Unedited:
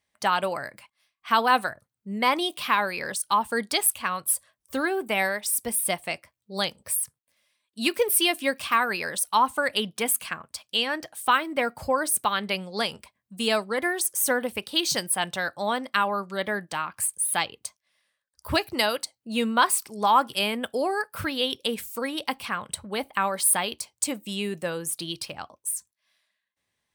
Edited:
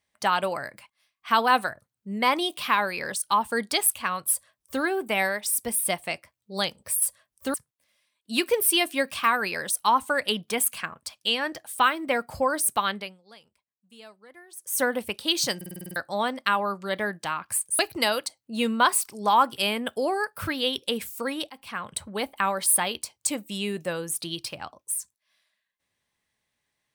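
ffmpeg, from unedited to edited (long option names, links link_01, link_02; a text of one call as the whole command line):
ffmpeg -i in.wav -filter_complex "[0:a]asplit=15[link_01][link_02][link_03][link_04][link_05][link_06][link_07][link_08][link_09][link_10][link_11][link_12][link_13][link_14][link_15];[link_01]atrim=end=7.022[link_16];[link_02]atrim=start=4.298:end=4.822[link_17];[link_03]atrim=start=7.018:end=12.72,asetpts=PTS-STARTPTS,afade=type=out:start_time=5.362:duration=0.34:curve=qua:silence=0.0668344[link_18];[link_04]atrim=start=12.72:end=13.95,asetpts=PTS-STARTPTS,volume=-23.5dB[link_19];[link_05]atrim=start=13.95:end=15.092,asetpts=PTS-STARTPTS,afade=type=in:duration=0.34:curve=qua:silence=0.0668344[link_20];[link_06]atrim=start=15.038:end=15.092[link_21];[link_07]atrim=start=15.038:end=15.092[link_22];[link_08]atrim=start=15.038:end=15.092[link_23];[link_09]atrim=start=15.038:end=15.092[link_24];[link_10]atrim=start=15.038:end=15.092[link_25];[link_11]atrim=start=15.038:end=15.092[link_26];[link_12]atrim=start=15.038:end=15.092[link_27];[link_13]atrim=start=15.438:end=17.272[link_28];[link_14]atrim=start=18.558:end=22.27,asetpts=PTS-STARTPTS,afade=type=out:start_time=3.708:duration=0.004:curve=hsin:silence=0.0841395[link_29];[link_15]atrim=start=22.27,asetpts=PTS-STARTPTS,afade=type=in:duration=0.42:silence=0.0841395[link_30];[link_16][link_17]acrossfade=duration=0.004:curve1=hsin:curve2=hsin[link_31];[link_18][link_19][link_20]concat=n=3:v=0:a=1[link_32];[link_31][link_32]acrossfade=duration=0.004:curve1=hsin:curve2=hsin[link_33];[link_33][link_21]acrossfade=duration=0.004:curve1=hsin:curve2=hsin[link_34];[link_34][link_22]acrossfade=duration=0.004:curve1=hsin:curve2=hsin[link_35];[link_35][link_23]acrossfade=duration=0.004:curve1=hsin:curve2=hsin[link_36];[link_36][link_24]acrossfade=duration=0.004:curve1=hsin:curve2=hsin[link_37];[link_37][link_25]acrossfade=duration=0.004:curve1=hsin:curve2=hsin[link_38];[link_38][link_26]acrossfade=duration=0.004:curve1=hsin:curve2=hsin[link_39];[link_39][link_27]acrossfade=duration=0.004:curve1=hsin:curve2=hsin[link_40];[link_40][link_28]acrossfade=duration=0.004:curve1=hsin:curve2=hsin[link_41];[link_29][link_30]concat=n=2:v=0:a=1[link_42];[link_41][link_42]acrossfade=duration=0.004:curve1=hsin:curve2=hsin" out.wav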